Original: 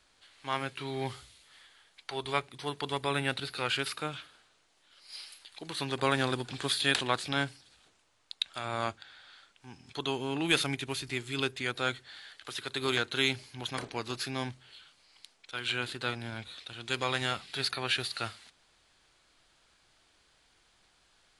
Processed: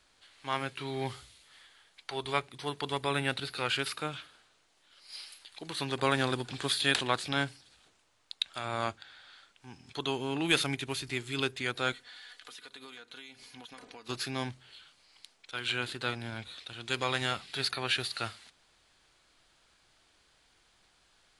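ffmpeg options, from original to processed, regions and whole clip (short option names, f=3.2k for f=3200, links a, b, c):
-filter_complex "[0:a]asettb=1/sr,asplit=3[a][b][c];[a]atrim=end=11.924[d];[b]atrim=start=11.92:end=14.09,asetpts=PTS-STARTPTS,afade=t=in:d=0.004:c=qsin,afade=t=out:st=2.166:d=0.004:c=qsin,equalizer=f=82:w=0.41:g=-7,aecho=1:1:4.1:0.53,atrim=end_sample=95697,acompressor=threshold=-45dB:ratio=8:attack=3.2:release=140:knee=1:detection=peak[e];[c]atrim=start=14.086[f];[d][e]acrossfade=d=0.004:c1=hsin:c2=qsin[g];[g][f]acrossfade=d=0.004:c1=qsin:c2=hsin"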